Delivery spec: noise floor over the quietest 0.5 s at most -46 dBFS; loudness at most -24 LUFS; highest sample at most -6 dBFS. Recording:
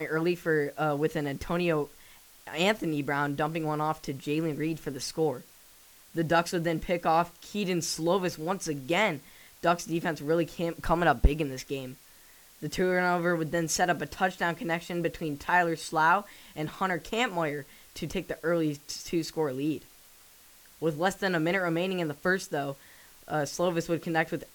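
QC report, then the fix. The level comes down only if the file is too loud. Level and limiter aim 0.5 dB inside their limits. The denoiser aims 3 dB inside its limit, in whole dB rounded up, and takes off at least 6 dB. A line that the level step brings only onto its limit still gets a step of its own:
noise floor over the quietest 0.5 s -56 dBFS: pass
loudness -29.5 LUFS: pass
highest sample -10.0 dBFS: pass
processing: none needed

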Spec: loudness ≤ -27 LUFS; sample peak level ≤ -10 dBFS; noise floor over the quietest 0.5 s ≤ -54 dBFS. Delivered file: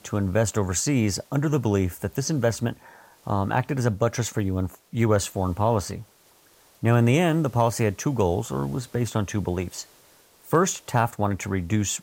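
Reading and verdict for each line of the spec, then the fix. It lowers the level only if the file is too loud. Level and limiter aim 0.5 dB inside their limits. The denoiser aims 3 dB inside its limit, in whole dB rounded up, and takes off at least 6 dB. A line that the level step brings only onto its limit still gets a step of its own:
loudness -24.5 LUFS: fail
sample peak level -8.0 dBFS: fail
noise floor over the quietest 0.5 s -57 dBFS: pass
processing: trim -3 dB

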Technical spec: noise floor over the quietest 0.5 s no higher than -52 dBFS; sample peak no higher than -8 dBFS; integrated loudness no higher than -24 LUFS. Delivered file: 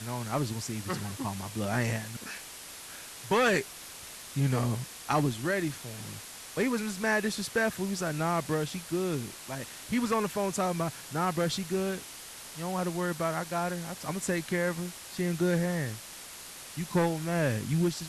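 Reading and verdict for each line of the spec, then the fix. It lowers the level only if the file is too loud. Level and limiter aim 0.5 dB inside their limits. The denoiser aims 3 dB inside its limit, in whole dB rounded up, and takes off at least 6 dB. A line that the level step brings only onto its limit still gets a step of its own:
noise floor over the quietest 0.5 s -45 dBFS: fail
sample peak -13.5 dBFS: pass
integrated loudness -31.0 LUFS: pass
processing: noise reduction 10 dB, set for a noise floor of -45 dBFS

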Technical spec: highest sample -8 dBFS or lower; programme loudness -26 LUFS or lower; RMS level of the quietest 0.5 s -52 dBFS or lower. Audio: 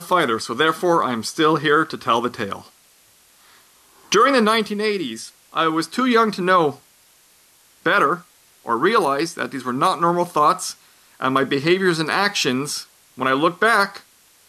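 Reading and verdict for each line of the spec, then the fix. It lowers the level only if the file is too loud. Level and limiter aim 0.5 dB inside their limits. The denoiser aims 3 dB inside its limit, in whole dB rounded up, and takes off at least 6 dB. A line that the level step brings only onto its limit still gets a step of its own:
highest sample -5.0 dBFS: fail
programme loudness -19.5 LUFS: fail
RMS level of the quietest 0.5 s -54 dBFS: pass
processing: trim -7 dB

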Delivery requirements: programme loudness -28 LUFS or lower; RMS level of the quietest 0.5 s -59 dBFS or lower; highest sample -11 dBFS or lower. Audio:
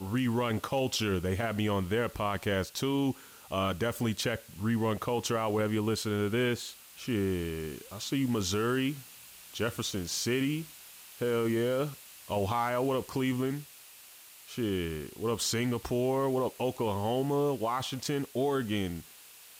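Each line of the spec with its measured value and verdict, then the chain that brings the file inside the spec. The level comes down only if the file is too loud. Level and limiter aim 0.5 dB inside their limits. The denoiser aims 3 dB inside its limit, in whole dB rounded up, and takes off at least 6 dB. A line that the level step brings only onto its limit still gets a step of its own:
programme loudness -31.5 LUFS: pass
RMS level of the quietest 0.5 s -53 dBFS: fail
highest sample -19.0 dBFS: pass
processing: noise reduction 9 dB, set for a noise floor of -53 dBFS

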